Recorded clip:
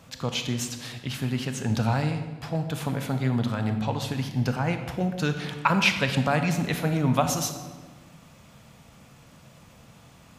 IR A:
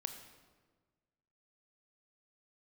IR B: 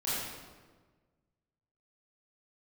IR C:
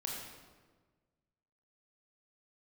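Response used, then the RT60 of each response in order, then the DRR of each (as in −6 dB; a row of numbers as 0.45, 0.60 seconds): A; 1.4, 1.4, 1.4 seconds; 6.5, −11.0, −2.0 decibels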